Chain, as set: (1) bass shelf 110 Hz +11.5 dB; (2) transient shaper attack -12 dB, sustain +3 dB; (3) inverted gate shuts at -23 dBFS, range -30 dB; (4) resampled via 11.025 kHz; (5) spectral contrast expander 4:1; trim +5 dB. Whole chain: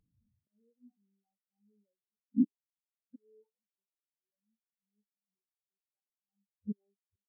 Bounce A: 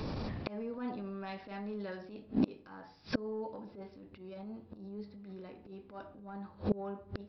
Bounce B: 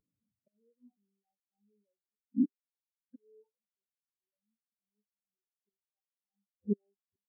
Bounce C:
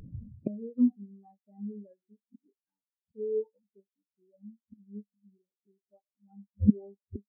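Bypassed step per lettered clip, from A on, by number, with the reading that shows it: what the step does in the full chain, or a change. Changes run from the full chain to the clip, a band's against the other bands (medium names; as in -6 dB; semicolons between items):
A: 5, crest factor change -3.0 dB; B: 1, momentary loudness spread change -5 LU; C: 2, momentary loudness spread change +7 LU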